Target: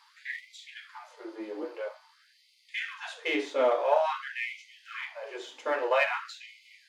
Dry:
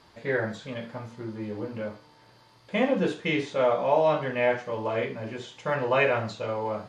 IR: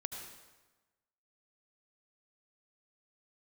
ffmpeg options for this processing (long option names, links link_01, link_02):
-af "aeval=exprs='if(lt(val(0),0),0.708*val(0),val(0))':channel_layout=same,afftfilt=real='re*gte(b*sr/1024,240*pow(2000/240,0.5+0.5*sin(2*PI*0.49*pts/sr)))':imag='im*gte(b*sr/1024,240*pow(2000/240,0.5+0.5*sin(2*PI*0.49*pts/sr)))':win_size=1024:overlap=0.75"